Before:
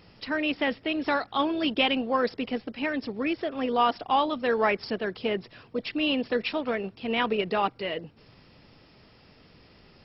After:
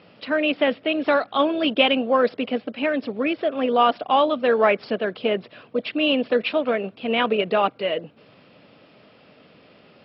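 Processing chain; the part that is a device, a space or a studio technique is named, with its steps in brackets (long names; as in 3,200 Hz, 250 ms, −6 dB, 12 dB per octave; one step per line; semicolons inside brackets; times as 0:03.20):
kitchen radio (loudspeaker in its box 200–3,600 Hz, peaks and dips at 360 Hz −4 dB, 590 Hz +5 dB, 900 Hz −5 dB, 1,900 Hz −5 dB)
level +6.5 dB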